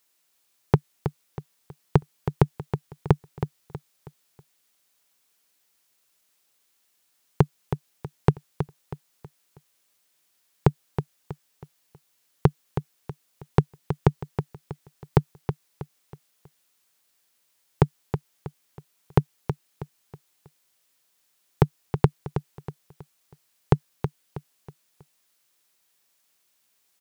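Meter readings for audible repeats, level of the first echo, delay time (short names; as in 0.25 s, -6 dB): 4, -9.0 dB, 0.321 s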